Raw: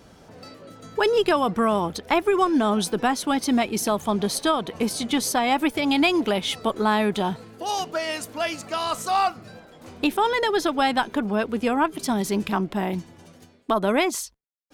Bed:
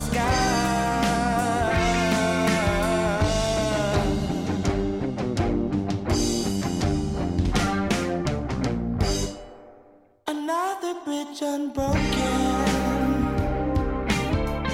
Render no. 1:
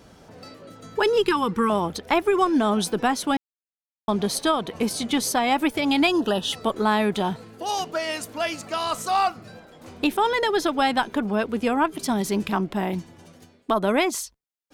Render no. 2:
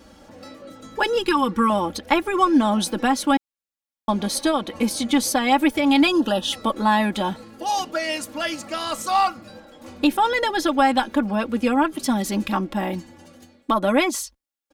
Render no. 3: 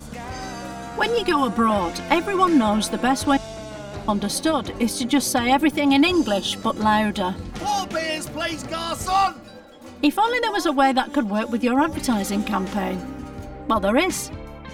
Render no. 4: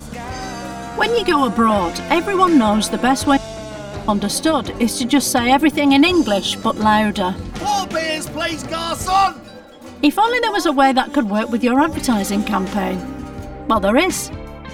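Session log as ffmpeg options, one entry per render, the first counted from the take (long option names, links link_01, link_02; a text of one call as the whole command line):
ffmpeg -i in.wav -filter_complex "[0:a]asettb=1/sr,asplit=3[link_01][link_02][link_03];[link_01]atrim=end=1.024[link_04];[link_02]atrim=start=1.02:end=1.7,asetpts=PTS-STARTPTS,afade=type=in:duration=0.004:curve=qsin,afade=type=out:start_time=0.676:duration=0.004:curve=qsin,asuperstop=centerf=650:order=8:qfactor=2.4[link_05];[link_03]atrim=start=1.696[link_06];[link_04][link_05]acrossfade=duration=0.004:curve1=hsin:curve2=qsin[link_07];[link_07][link_06]acrossfade=duration=0.004:curve1=qsin:curve2=hsin,asettb=1/sr,asplit=3[link_08][link_09][link_10];[link_08]atrim=end=6.074[link_11];[link_09]atrim=start=6.07:end=6.53,asetpts=PTS-STARTPTS,afade=type=in:duration=0.004:curve=qsin,afade=type=out:start_time=0.456:duration=0.004:curve=qsin,asuperstop=centerf=2200:order=8:qfactor=3.3[link_12];[link_10]atrim=start=6.526[link_13];[link_11][link_12]acrossfade=duration=0.004:curve1=hsin:curve2=qsin[link_14];[link_14][link_13]acrossfade=duration=0.004:curve1=qsin:curve2=hsin,asplit=3[link_15][link_16][link_17];[link_15]atrim=end=3.37,asetpts=PTS-STARTPTS,afade=type=out:start_time=3.366:duration=0.004:curve=hsin[link_18];[link_16]atrim=start=3.37:end=4.08,asetpts=PTS-STARTPTS,volume=0[link_19];[link_17]atrim=start=4.08,asetpts=PTS-STARTPTS,afade=type=in:duration=0.004:curve=hsin[link_20];[link_18][link_19][link_20]concat=n=3:v=0:a=1" out.wav
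ffmpeg -i in.wav -af "aecho=1:1:3.6:0.75" out.wav
ffmpeg -i in.wav -i bed.wav -filter_complex "[1:a]volume=-11dB[link_01];[0:a][link_01]amix=inputs=2:normalize=0" out.wav
ffmpeg -i in.wav -af "volume=4.5dB,alimiter=limit=-2dB:level=0:latency=1" out.wav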